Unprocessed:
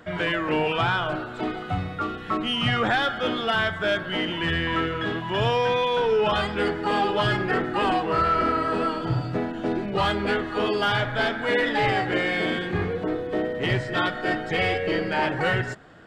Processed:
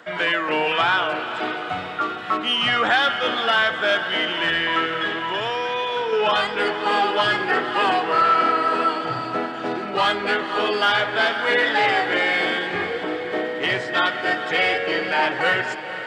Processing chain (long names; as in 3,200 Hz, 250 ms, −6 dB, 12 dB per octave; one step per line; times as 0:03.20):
meter weighting curve A
0:05.05–0:06.13: downward compressor 4 to 1, threshold −27 dBFS, peak gain reduction 5.5 dB
feedback delay with all-pass diffusion 495 ms, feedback 52%, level −11 dB
level +4.5 dB